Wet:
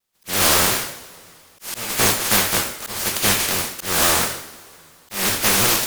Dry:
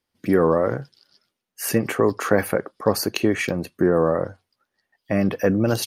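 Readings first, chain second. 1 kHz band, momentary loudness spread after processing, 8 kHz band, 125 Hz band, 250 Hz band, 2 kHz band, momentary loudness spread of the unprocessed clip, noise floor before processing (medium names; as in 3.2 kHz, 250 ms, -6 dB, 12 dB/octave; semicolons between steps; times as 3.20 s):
+4.5 dB, 15 LU, +15.5 dB, -4.0 dB, -7.5 dB, +7.0 dB, 8 LU, -81 dBFS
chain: spectral contrast reduction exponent 0.12; in parallel at -11.5 dB: sine folder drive 14 dB, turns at 3.5 dBFS; on the sum: two-slope reverb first 0.63 s, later 2.9 s, from -22 dB, DRR 0 dB; slow attack 226 ms; vibrato with a chosen wave saw down 5.7 Hz, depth 160 cents; trim -8.5 dB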